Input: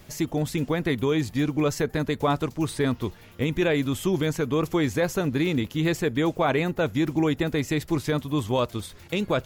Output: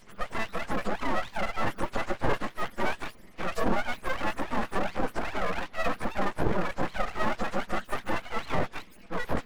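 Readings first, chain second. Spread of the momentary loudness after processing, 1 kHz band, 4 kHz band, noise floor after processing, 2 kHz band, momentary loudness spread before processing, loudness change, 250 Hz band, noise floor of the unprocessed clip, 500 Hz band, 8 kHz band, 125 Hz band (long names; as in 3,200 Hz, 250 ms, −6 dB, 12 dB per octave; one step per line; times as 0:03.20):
5 LU, +1.0 dB, −7.0 dB, −51 dBFS, −1.5 dB, 5 LU, −6.5 dB, −11.0 dB, −49 dBFS, −7.5 dB, −10.0 dB, −12.0 dB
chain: frequency axis turned over on the octave scale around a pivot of 450 Hz
full-wave rectification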